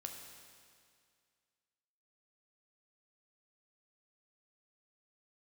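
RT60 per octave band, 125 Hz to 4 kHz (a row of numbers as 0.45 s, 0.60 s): 2.1 s, 2.1 s, 2.1 s, 2.1 s, 2.1 s, 2.1 s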